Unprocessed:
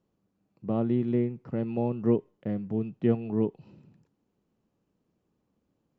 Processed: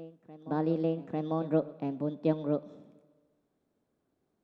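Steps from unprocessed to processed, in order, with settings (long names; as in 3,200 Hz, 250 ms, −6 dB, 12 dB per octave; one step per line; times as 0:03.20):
backwards echo 1,144 ms −17 dB
wrong playback speed 33 rpm record played at 45 rpm
four-comb reverb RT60 1.5 s, combs from 32 ms, DRR 18 dB
level −3 dB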